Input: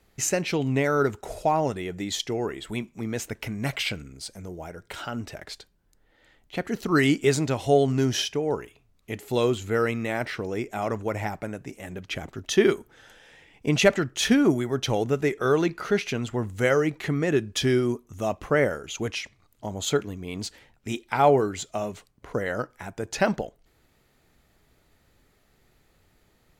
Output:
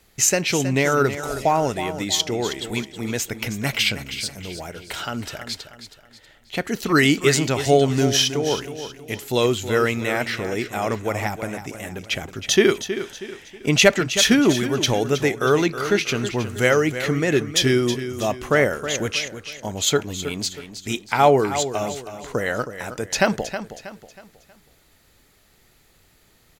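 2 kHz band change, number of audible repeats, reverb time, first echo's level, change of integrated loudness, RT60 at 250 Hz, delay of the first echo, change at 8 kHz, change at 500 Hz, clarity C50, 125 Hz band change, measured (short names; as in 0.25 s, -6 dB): +7.0 dB, 3, none, -11.0 dB, +5.0 dB, none, 0.319 s, +9.5 dB, +3.5 dB, none, +3.5 dB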